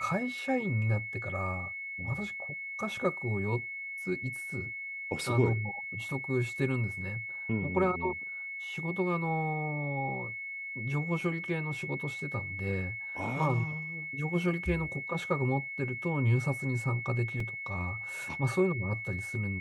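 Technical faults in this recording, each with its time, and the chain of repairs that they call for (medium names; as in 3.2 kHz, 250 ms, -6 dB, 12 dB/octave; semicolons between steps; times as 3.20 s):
whine 2.2 kHz -37 dBFS
17.40 s: dropout 3 ms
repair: band-stop 2.2 kHz, Q 30; interpolate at 17.40 s, 3 ms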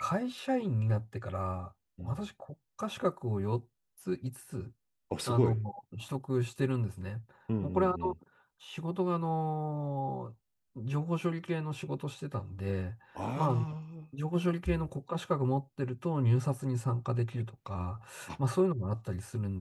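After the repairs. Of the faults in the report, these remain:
nothing left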